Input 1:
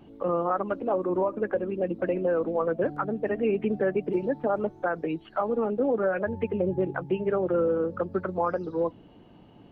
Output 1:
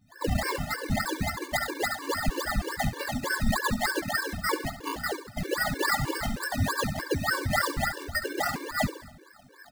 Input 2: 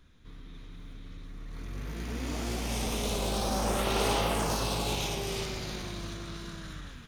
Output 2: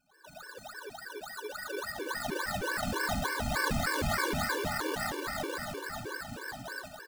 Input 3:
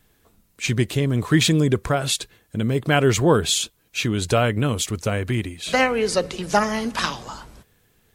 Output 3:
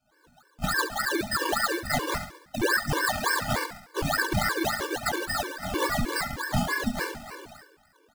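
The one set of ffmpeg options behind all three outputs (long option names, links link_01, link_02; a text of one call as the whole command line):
ffmpeg -i in.wav -af "afftfilt=real='real(if(lt(b,272),68*(eq(floor(b/68),0)*3+eq(floor(b/68),1)*0+eq(floor(b/68),2)*1+eq(floor(b/68),3)*2)+mod(b,68),b),0)':imag='imag(if(lt(b,272),68*(eq(floor(b/68),0)*3+eq(floor(b/68),1)*0+eq(floor(b/68),2)*1+eq(floor(b/68),3)*2)+mod(b,68),b),0)':win_size=2048:overlap=0.75,highshelf=frequency=12000:gain=-2,flanger=delay=18.5:depth=7.6:speed=0.74,bandreject=frequency=2500:width=5.5,acrusher=samples=18:mix=1:aa=0.000001:lfo=1:lforange=10.8:lforate=3.5,alimiter=limit=-18dB:level=0:latency=1:release=453,adynamicequalizer=threshold=0.00794:dfrequency=430:dqfactor=1.5:tfrequency=430:tqfactor=1.5:attack=5:release=100:ratio=0.375:range=2.5:mode=cutabove:tftype=bell,aecho=1:1:69|138|207|276|345:0.266|0.136|0.0692|0.0353|0.018,dynaudnorm=framelen=110:gausssize=3:maxgain=12dB,afftfilt=real='re*gt(sin(2*PI*3.2*pts/sr)*(1-2*mod(floor(b*sr/1024/300),2)),0)':imag='im*gt(sin(2*PI*3.2*pts/sr)*(1-2*mod(floor(b*sr/1024/300),2)),0)':win_size=1024:overlap=0.75,volume=-7dB" out.wav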